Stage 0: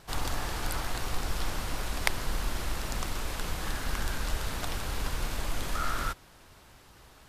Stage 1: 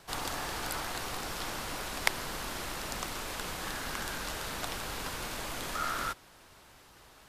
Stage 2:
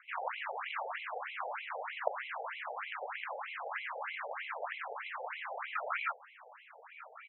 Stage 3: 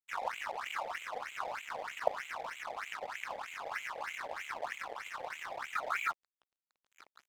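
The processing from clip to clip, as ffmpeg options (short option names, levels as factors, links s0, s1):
-filter_complex "[0:a]lowshelf=f=180:g=-7.5,acrossover=split=100|1200|2600[s0][s1][s2][s3];[s0]acompressor=threshold=0.00708:ratio=6[s4];[s4][s1][s2][s3]amix=inputs=4:normalize=0"
-af "acrusher=samples=12:mix=1:aa=0.000001,aecho=1:1:1162:0.15,afftfilt=real='re*between(b*sr/1024,600*pow(2900/600,0.5+0.5*sin(2*PI*3.2*pts/sr))/1.41,600*pow(2900/600,0.5+0.5*sin(2*PI*3.2*pts/sr))*1.41)':imag='im*between(b*sr/1024,600*pow(2900/600,0.5+0.5*sin(2*PI*3.2*pts/sr))/1.41,600*pow(2900/600,0.5+0.5*sin(2*PI*3.2*pts/sr))*1.41)':win_size=1024:overlap=0.75,volume=1.58"
-af "aeval=exprs='sgn(val(0))*max(abs(val(0))-0.00447,0)':c=same,volume=1.41"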